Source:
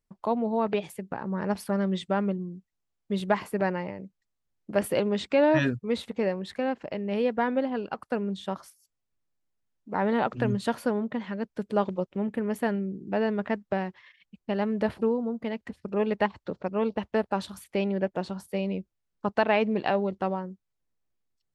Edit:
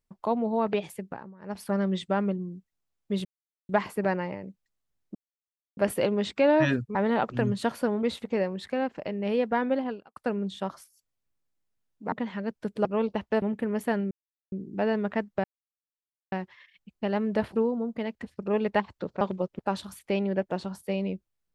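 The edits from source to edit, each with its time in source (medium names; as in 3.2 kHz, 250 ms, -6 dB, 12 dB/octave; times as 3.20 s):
1.01–1.72 s: dip -22 dB, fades 0.33 s
3.25 s: insert silence 0.44 s
4.71 s: insert silence 0.62 s
7.72–8.02 s: fade out quadratic
9.98–11.06 s: move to 5.89 s
11.79–12.17 s: swap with 16.67–17.24 s
12.86 s: insert silence 0.41 s
13.78 s: insert silence 0.88 s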